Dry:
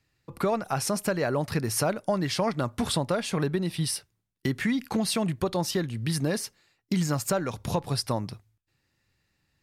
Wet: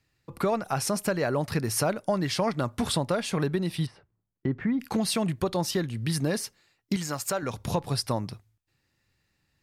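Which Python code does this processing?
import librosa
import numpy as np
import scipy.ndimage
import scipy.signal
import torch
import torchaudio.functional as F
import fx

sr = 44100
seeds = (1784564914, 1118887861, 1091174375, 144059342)

y = fx.lowpass(x, sr, hz=1200.0, slope=12, at=(3.85, 4.79), fade=0.02)
y = fx.low_shelf(y, sr, hz=320.0, db=-11.5, at=(6.96, 7.43))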